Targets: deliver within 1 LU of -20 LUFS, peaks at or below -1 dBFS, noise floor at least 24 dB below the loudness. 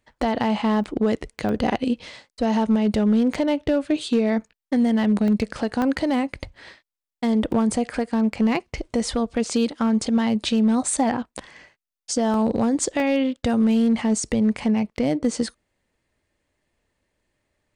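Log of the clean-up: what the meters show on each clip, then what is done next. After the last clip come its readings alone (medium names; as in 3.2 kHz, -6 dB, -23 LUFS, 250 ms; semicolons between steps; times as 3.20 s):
clipped samples 0.9%; clipping level -13.0 dBFS; dropouts 7; longest dropout 1.3 ms; loudness -22.5 LUFS; peak level -13.0 dBFS; loudness target -20.0 LUFS
-> clip repair -13 dBFS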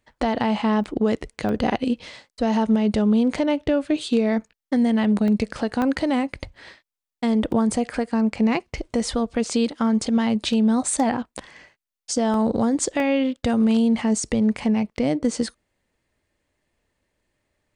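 clipped samples 0.0%; dropouts 7; longest dropout 1.3 ms
-> interpolate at 0.84/1.49/5.28/5.82/7.52/12.34/13.00 s, 1.3 ms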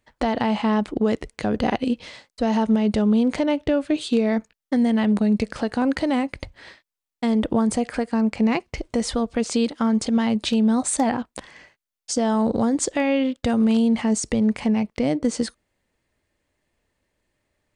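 dropouts 0; loudness -22.5 LUFS; peak level -8.5 dBFS; loudness target -20.0 LUFS
-> trim +2.5 dB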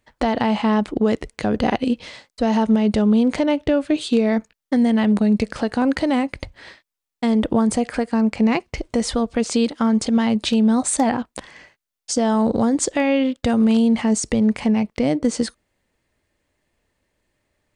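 loudness -20.0 LUFS; peak level -6.0 dBFS; noise floor -83 dBFS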